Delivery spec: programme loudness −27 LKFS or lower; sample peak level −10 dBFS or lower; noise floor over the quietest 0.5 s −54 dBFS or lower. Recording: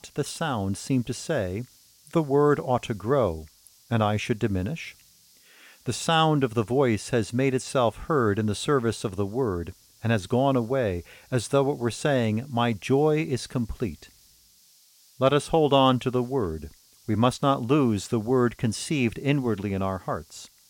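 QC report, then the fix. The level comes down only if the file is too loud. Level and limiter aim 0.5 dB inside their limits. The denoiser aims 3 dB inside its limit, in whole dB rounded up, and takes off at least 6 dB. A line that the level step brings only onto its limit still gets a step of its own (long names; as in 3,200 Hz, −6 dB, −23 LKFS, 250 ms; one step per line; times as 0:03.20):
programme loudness −25.5 LKFS: out of spec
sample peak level −8.5 dBFS: out of spec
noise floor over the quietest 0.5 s −58 dBFS: in spec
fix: level −2 dB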